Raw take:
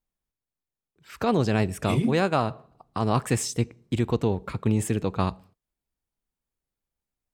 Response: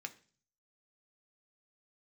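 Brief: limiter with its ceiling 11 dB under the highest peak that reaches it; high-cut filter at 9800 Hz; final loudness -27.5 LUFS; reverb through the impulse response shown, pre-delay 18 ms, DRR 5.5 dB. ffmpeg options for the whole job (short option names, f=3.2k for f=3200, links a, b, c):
-filter_complex "[0:a]lowpass=9.8k,alimiter=limit=-21dB:level=0:latency=1,asplit=2[a][b];[1:a]atrim=start_sample=2205,adelay=18[c];[b][c]afir=irnorm=-1:irlink=0,volume=-3.5dB[d];[a][d]amix=inputs=2:normalize=0,volume=4dB"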